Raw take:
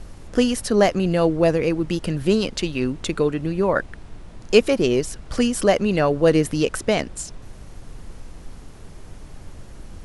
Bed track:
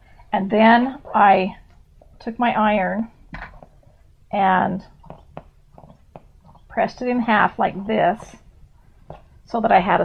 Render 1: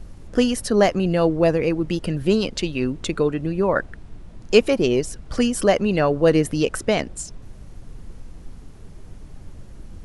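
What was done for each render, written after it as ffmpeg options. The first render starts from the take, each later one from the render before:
ffmpeg -i in.wav -af "afftdn=noise_reduction=6:noise_floor=-41" out.wav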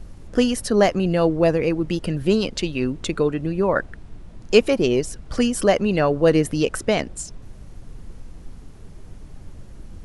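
ffmpeg -i in.wav -af anull out.wav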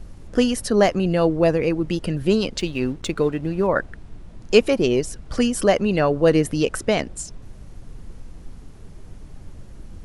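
ffmpeg -i in.wav -filter_complex "[0:a]asettb=1/sr,asplit=3[link_01][link_02][link_03];[link_01]atrim=end=2.594[link_04];[link_02]atrim=start=2.59:end=3.67,asetpts=PTS-STARTPTS,afade=type=in:duration=0.004:curve=qsin,afade=type=out:start_time=1.076:duration=0.004:curve=qsin,aeval=exprs='sgn(val(0))*max(abs(val(0))-0.00473,0)':channel_layout=same[link_05];[link_03]atrim=start=3.666[link_06];[link_04][link_05]acrossfade=duration=0.004:curve1=hsin:curve2=qsin[link_07];[link_07][link_06]acrossfade=duration=0.004:curve1=qsin:curve2=hsin" out.wav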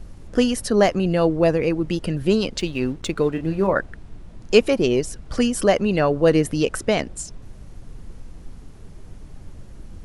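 ffmpeg -i in.wav -filter_complex "[0:a]asettb=1/sr,asplit=3[link_01][link_02][link_03];[link_01]atrim=end=3.334[link_04];[link_02]atrim=start=3.33:end=3.73,asetpts=PTS-STARTPTS,afade=type=in:duration=0.004:curve=qsin,afade=type=out:start_time=0.396:duration=0.004:curve=qsin,asplit=2[link_05][link_06];[link_06]adelay=31,volume=-8dB[link_07];[link_05][link_07]amix=inputs=2:normalize=0,atrim=end_sample=17640[link_08];[link_03]atrim=start=3.726[link_09];[link_04][link_08]acrossfade=duration=0.004:curve1=hsin:curve2=qsin[link_10];[link_10][link_09]acrossfade=duration=0.004:curve1=qsin:curve2=hsin" out.wav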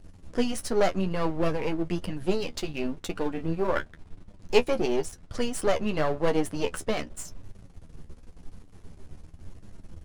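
ffmpeg -i in.wav -af "aeval=exprs='if(lt(val(0),0),0.251*val(0),val(0))':channel_layout=same,flanger=delay=9.9:depth=3.9:regen=31:speed=0.93:shape=triangular" out.wav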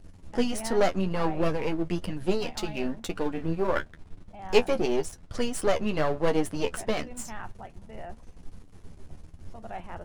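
ffmpeg -i in.wav -i bed.wav -filter_complex "[1:a]volume=-25dB[link_01];[0:a][link_01]amix=inputs=2:normalize=0" out.wav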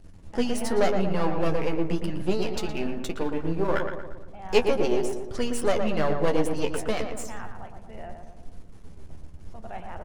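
ffmpeg -i in.wav -filter_complex "[0:a]asplit=2[link_01][link_02];[link_02]adelay=116,lowpass=frequency=1800:poles=1,volume=-5dB,asplit=2[link_03][link_04];[link_04]adelay=116,lowpass=frequency=1800:poles=1,volume=0.55,asplit=2[link_05][link_06];[link_06]adelay=116,lowpass=frequency=1800:poles=1,volume=0.55,asplit=2[link_07][link_08];[link_08]adelay=116,lowpass=frequency=1800:poles=1,volume=0.55,asplit=2[link_09][link_10];[link_10]adelay=116,lowpass=frequency=1800:poles=1,volume=0.55,asplit=2[link_11][link_12];[link_12]adelay=116,lowpass=frequency=1800:poles=1,volume=0.55,asplit=2[link_13][link_14];[link_14]adelay=116,lowpass=frequency=1800:poles=1,volume=0.55[link_15];[link_01][link_03][link_05][link_07][link_09][link_11][link_13][link_15]amix=inputs=8:normalize=0" out.wav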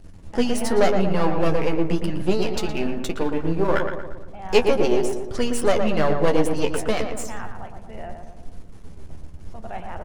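ffmpeg -i in.wav -af "volume=4.5dB,alimiter=limit=-2dB:level=0:latency=1" out.wav

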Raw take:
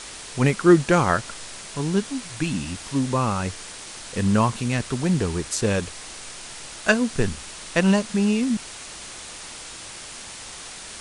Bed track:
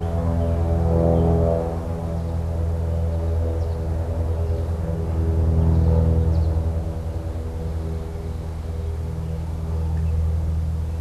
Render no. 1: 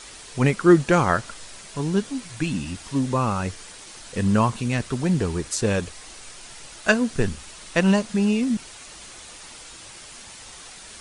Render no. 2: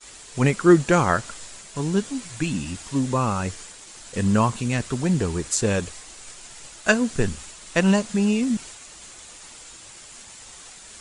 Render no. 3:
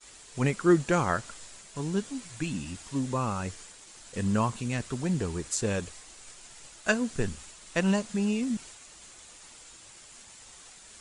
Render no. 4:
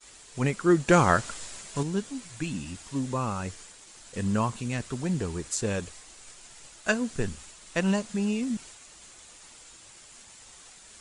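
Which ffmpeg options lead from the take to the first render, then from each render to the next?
ffmpeg -i in.wav -af "afftdn=noise_reduction=6:noise_floor=-39" out.wav
ffmpeg -i in.wav -af "agate=range=-33dB:threshold=-38dB:ratio=3:detection=peak,equalizer=frequency=7300:width_type=o:width=0.3:gain=7" out.wav
ffmpeg -i in.wav -af "volume=-7dB" out.wav
ffmpeg -i in.wav -filter_complex "[0:a]asettb=1/sr,asplit=3[link_01][link_02][link_03];[link_01]atrim=end=0.884[link_04];[link_02]atrim=start=0.88:end=1.83,asetpts=PTS-STARTPTS,afade=type=in:duration=0.004:curve=qsin,afade=type=out:start_time=0.946:duration=0.004:curve=qsin,acontrast=59[link_05];[link_03]atrim=start=1.826[link_06];[link_04][link_05]acrossfade=duration=0.004:curve1=hsin:curve2=qsin[link_07];[link_07][link_06]acrossfade=duration=0.004:curve1=qsin:curve2=hsin" out.wav

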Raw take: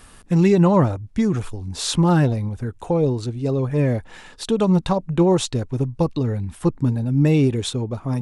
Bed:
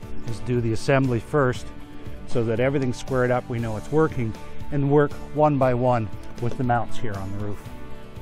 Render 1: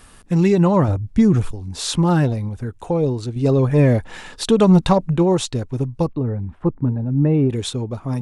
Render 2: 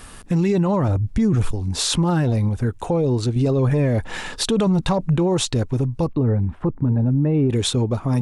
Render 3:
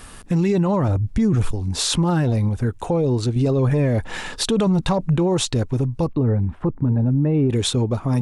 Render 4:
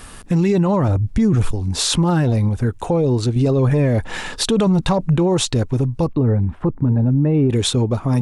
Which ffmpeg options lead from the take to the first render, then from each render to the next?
ffmpeg -i in.wav -filter_complex "[0:a]asettb=1/sr,asplit=3[link_01][link_02][link_03];[link_01]atrim=end=0.884[link_04];[link_02]atrim=start=0.88:end=1.51,asetpts=PTS-STARTPTS,afade=type=in:duration=0.004:curve=qsin,afade=type=out:start_time=0.626:duration=0.004:curve=qsin,lowshelf=frequency=360:gain=8[link_05];[link_03]atrim=start=1.506[link_06];[link_04][link_05]acrossfade=duration=0.004:curve1=hsin:curve2=qsin[link_07];[link_07][link_06]acrossfade=duration=0.004:curve1=qsin:curve2=hsin,asettb=1/sr,asplit=3[link_08][link_09][link_10];[link_08]atrim=end=3.364[link_11];[link_09]atrim=start=3.36:end=5.17,asetpts=PTS-STARTPTS,afade=type=in:duration=0.004:curve=qsin,afade=type=out:start_time=1.806:duration=0.004:curve=qsin,acontrast=47[link_12];[link_10]atrim=start=5.166[link_13];[link_11][link_12]acrossfade=duration=0.004:curve1=hsin:curve2=qsin[link_14];[link_14][link_13]acrossfade=duration=0.004:curve1=qsin:curve2=hsin,asettb=1/sr,asplit=3[link_15][link_16][link_17];[link_15]atrim=end=6.074[link_18];[link_16]atrim=start=6.07:end=7.5,asetpts=PTS-STARTPTS,afade=type=in:duration=0.004:curve=qsin,afade=type=out:start_time=1.426:duration=0.004:curve=qsin,lowpass=1300[link_19];[link_17]atrim=start=7.496[link_20];[link_18][link_19]acrossfade=duration=0.004:curve1=hsin:curve2=qsin[link_21];[link_21][link_20]acrossfade=duration=0.004:curve1=qsin:curve2=hsin" out.wav
ffmpeg -i in.wav -filter_complex "[0:a]asplit=2[link_01][link_02];[link_02]acompressor=threshold=-21dB:ratio=6,volume=0dB[link_03];[link_01][link_03]amix=inputs=2:normalize=0,alimiter=limit=-12dB:level=0:latency=1:release=18" out.wav
ffmpeg -i in.wav -af anull out.wav
ffmpeg -i in.wav -af "volume=2.5dB" out.wav

